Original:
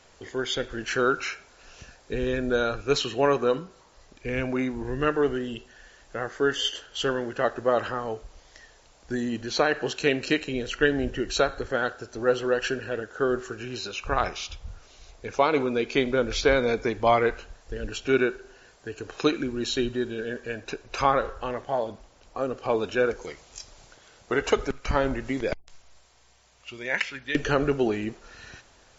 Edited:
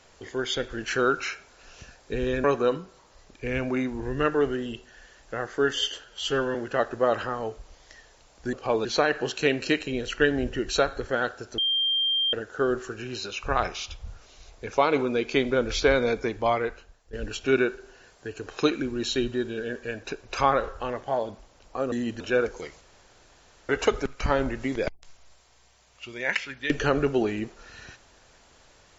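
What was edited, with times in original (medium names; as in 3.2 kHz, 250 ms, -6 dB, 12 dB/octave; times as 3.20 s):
2.44–3.26 s: delete
6.86–7.20 s: stretch 1.5×
9.18–9.46 s: swap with 22.53–22.85 s
12.19–12.94 s: bleep 3.18 kHz -21.5 dBFS
16.65–17.74 s: fade out, to -14.5 dB
23.46–24.34 s: room tone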